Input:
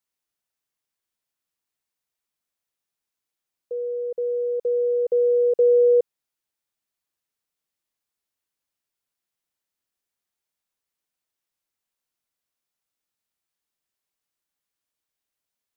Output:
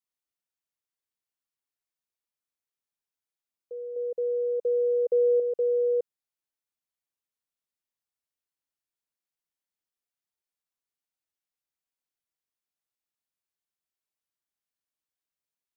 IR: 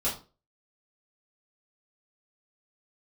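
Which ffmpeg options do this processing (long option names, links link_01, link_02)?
-filter_complex "[0:a]asettb=1/sr,asplit=3[link_01][link_02][link_03];[link_01]atrim=end=3.964[link_04];[link_02]atrim=start=3.96:end=5.4,asetpts=PTS-STARTPTS,afade=type=in:duration=0.004:curve=qsin,afade=type=out:start_time=1.436:duration=0.004:curve=qsin,equalizer=frequency=510:width_type=o:width=1.1:gain=6[link_05];[link_03]atrim=start=5.396[link_06];[link_04][link_05]acrossfade=duration=0.004:curve1=hsin:curve2=qsin[link_07];[link_07][link_06]acrossfade=duration=0.004:curve1=qsin:curve2=hsin,volume=-8.5dB"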